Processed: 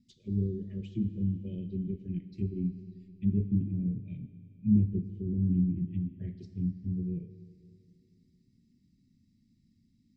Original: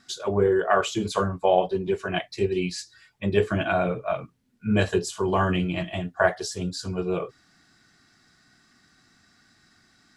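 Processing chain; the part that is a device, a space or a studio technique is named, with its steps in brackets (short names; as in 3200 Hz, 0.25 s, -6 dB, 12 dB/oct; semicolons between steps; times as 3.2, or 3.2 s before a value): elliptic band-stop 240–4300 Hz, stop band 60 dB; treble ducked by the level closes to 770 Hz, closed at -28.5 dBFS; EQ curve 1300 Hz 0 dB, 2100 Hz +10 dB, 4000 Hz -17 dB; behind a face mask (high shelf 2500 Hz -6.5 dB); Schroeder reverb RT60 2.7 s, combs from 27 ms, DRR 10.5 dB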